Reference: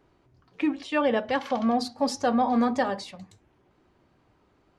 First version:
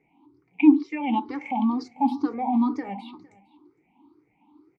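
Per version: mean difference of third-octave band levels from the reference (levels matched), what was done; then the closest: 9.5 dB: moving spectral ripple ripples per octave 0.53, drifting +2.1 Hz, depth 24 dB; limiter -12.5 dBFS, peak gain reduction 6.5 dB; vowel filter u; on a send: echo 0.459 s -23 dB; on the sum: gain +9 dB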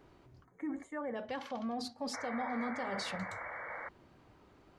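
5.5 dB: spectral gain 0.45–1.16, 2300–6100 Hz -25 dB; reverse; compressor 10:1, threshold -36 dBFS, peak gain reduction 17 dB; reverse; limiter -33.5 dBFS, peak gain reduction 6.5 dB; painted sound noise, 2.13–3.89, 450–2300 Hz -46 dBFS; gain +2.5 dB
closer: second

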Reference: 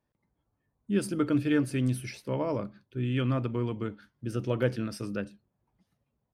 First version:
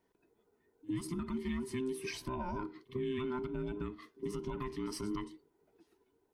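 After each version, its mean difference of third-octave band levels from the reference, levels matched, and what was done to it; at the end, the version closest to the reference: 7.0 dB: band inversion scrambler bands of 500 Hz; compressor 10:1, threshold -37 dBFS, peak gain reduction 16.5 dB; limiter -33.5 dBFS, peak gain reduction 6 dB; pre-echo 61 ms -20.5 dB; gain +4.5 dB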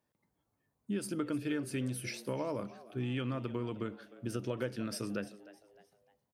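5.0 dB: HPF 150 Hz 6 dB/oct; high shelf 5300 Hz +5 dB; compressor, threshold -32 dBFS, peak gain reduction 10.5 dB; frequency-shifting echo 0.306 s, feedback 39%, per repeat +99 Hz, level -18 dB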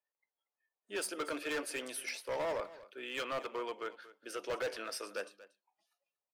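13.0 dB: spectral noise reduction 15 dB; HPF 510 Hz 24 dB/oct; hard clip -35 dBFS, distortion -7 dB; echo 0.235 s -17.5 dB; gain +2.5 dB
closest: second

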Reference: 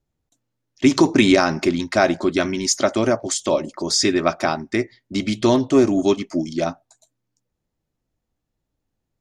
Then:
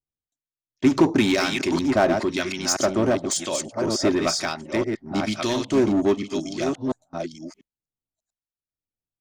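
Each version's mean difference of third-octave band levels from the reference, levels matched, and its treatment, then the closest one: 6.5 dB: reverse delay 0.692 s, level -6 dB; gate with hold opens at -31 dBFS; harmonic tremolo 1 Hz, depth 70%, crossover 1500 Hz; in parallel at -8 dB: wavefolder -20.5 dBFS; on the sum: gain -2 dB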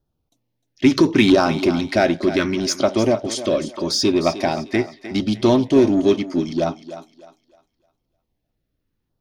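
4.0 dB: bell 7500 Hz -14.5 dB 0.47 oct; LFO notch saw down 0.77 Hz 600–2300 Hz; in parallel at -7.5 dB: overloaded stage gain 21.5 dB; on the sum: thinning echo 0.305 s, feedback 32%, high-pass 280 Hz, level -12 dB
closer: second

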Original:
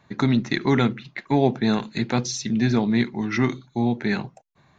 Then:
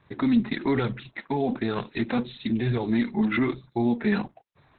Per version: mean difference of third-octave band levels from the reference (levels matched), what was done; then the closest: 3.5 dB: limiter -15 dBFS, peak gain reduction 9 dB; flange 1.1 Hz, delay 1.6 ms, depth 3.3 ms, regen 0%; gain +4 dB; Opus 8 kbps 48000 Hz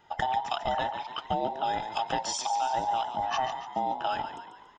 11.0 dB: band inversion scrambler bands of 1000 Hz; compressor, threshold -24 dBFS, peak gain reduction 11 dB; on a send: frequency-shifting echo 0.142 s, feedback 50%, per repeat +43 Hz, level -9.5 dB; on the sum: gain -2 dB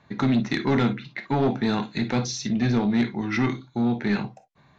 2.5 dB: non-linear reverb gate 80 ms flat, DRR 8 dB; soft clip -15 dBFS, distortion -13 dB; LPF 5700 Hz 12 dB/oct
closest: third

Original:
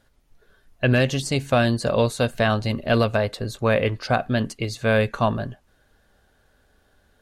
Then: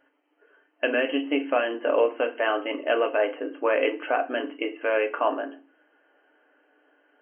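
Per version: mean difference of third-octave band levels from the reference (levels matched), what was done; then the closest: 13.0 dB: limiter -11 dBFS, peak gain reduction 5.5 dB; brick-wall FIR band-pass 260–3200 Hz; FDN reverb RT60 0.33 s, low-frequency decay 1.55×, high-frequency decay 0.9×, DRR 4.5 dB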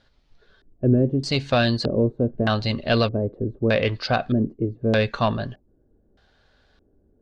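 7.0 dB: high shelf 9300 Hz -6 dB; soft clip -8 dBFS, distortion -22 dB; LFO low-pass square 0.81 Hz 350–4400 Hz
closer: second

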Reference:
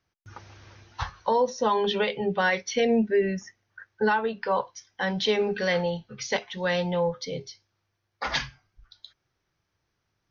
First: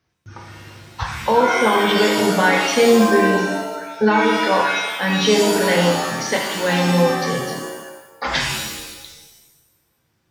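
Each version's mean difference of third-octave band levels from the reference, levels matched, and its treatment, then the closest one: 12.5 dB: HPF 49 Hz; bell 180 Hz +4.5 dB 2.2 oct; shimmer reverb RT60 1 s, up +7 st, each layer -2 dB, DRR 0.5 dB; gain +4 dB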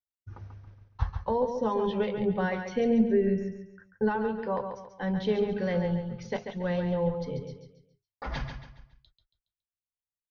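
6.5 dB: gate -48 dBFS, range -38 dB; tilt -4 dB/oct; on a send: feedback echo 0.139 s, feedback 36%, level -7 dB; on the sum: gain -8 dB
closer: second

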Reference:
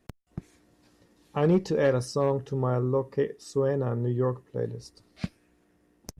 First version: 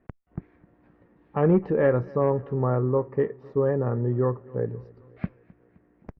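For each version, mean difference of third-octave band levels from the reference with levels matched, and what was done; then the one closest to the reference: 3.5 dB: LPF 2000 Hz 24 dB/oct; on a send: feedback echo 0.26 s, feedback 56%, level -23.5 dB; on the sum: gain +2.5 dB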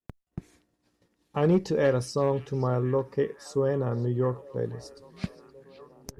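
1.5 dB: on a send: delay with a stepping band-pass 0.522 s, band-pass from 3400 Hz, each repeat -0.7 oct, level -12 dB; on the sum: expander -53 dBFS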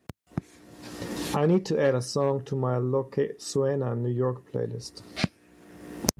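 2.5 dB: recorder AGC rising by 37 dB/s; HPF 84 Hz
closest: second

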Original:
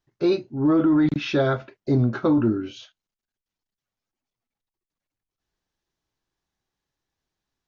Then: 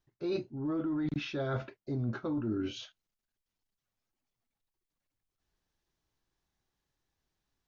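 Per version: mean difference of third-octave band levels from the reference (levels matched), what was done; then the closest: 3.0 dB: low shelf 110 Hz +5 dB; reverse; compressor 12:1, threshold -29 dBFS, peak gain reduction 14.5 dB; reverse; gain -1.5 dB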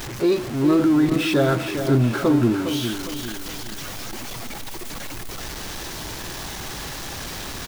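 10.5 dB: zero-crossing step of -26 dBFS; feedback echo 0.407 s, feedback 43%, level -8.5 dB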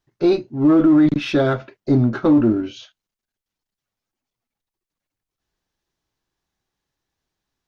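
1.5 dB: dynamic EQ 280 Hz, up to +4 dB, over -28 dBFS, Q 1.5; in parallel at -7 dB: one-sided clip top -30.5 dBFS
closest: third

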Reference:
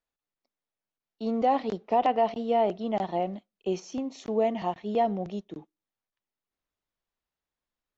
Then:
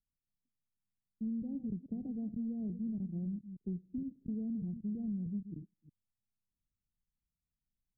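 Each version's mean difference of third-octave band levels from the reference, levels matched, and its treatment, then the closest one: 12.5 dB: reverse delay 0.155 s, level -13 dB; inverse Chebyshev low-pass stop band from 1200 Hz, stop band 80 dB; compressor, threshold -41 dBFS, peak gain reduction 8 dB; gain +6 dB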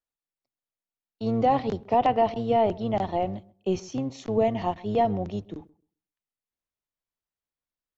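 3.0 dB: octaver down 1 oct, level -5 dB; gate -51 dBFS, range -9 dB; on a send: darkening echo 0.132 s, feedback 19%, low-pass 1300 Hz, level -21.5 dB; on the sum: gain +2 dB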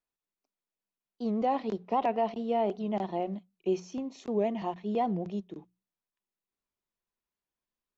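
2.0 dB: notches 60/120/180 Hz; small resonant body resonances 200/370/1000/2500 Hz, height 6 dB; record warp 78 rpm, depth 160 cents; gain -5 dB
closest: third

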